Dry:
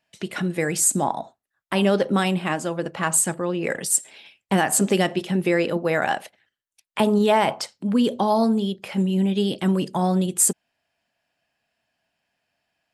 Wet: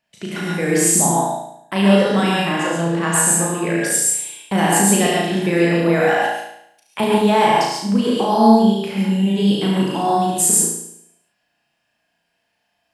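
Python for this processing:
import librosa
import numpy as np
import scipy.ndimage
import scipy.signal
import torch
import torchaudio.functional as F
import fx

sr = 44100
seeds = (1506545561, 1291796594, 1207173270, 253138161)

y = fx.dmg_crackle(x, sr, seeds[0], per_s=95.0, level_db=-61.0, at=(6.15, 6.99), fade=0.02)
y = fx.room_flutter(y, sr, wall_m=6.1, rt60_s=0.73)
y = fx.rev_gated(y, sr, seeds[1], gate_ms=160, shape='rising', drr_db=-1.5)
y = y * 10.0 ** (-1.0 / 20.0)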